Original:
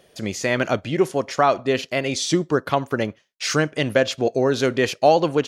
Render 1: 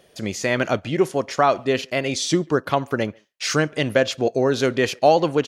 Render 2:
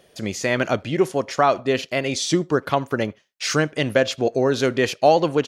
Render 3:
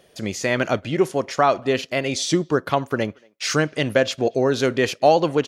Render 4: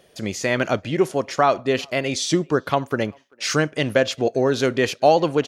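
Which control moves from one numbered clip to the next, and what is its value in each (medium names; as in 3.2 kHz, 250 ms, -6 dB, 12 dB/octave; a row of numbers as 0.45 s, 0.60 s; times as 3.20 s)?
speakerphone echo, time: 140 ms, 80 ms, 230 ms, 390 ms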